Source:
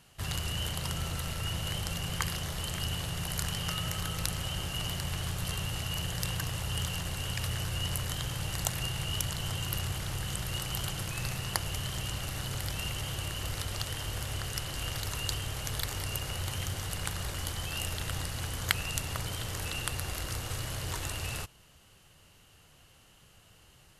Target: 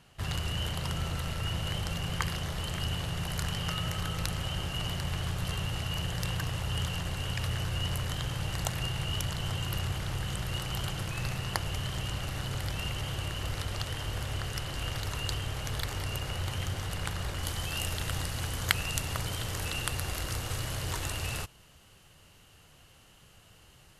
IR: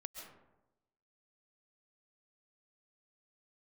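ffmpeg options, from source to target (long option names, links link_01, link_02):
-af "asetnsamples=nb_out_samples=441:pad=0,asendcmd='17.43 highshelf g -2',highshelf=frequency=5300:gain=-9.5,volume=2dB"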